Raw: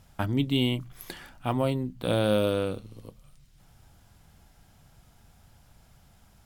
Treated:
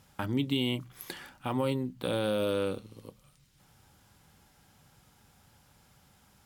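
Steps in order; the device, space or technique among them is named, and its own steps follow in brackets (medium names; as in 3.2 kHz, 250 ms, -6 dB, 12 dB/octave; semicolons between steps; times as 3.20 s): PA system with an anti-feedback notch (high-pass 170 Hz 6 dB/octave; Butterworth band-stop 670 Hz, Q 6.9; peak limiter -19 dBFS, peak gain reduction 6 dB)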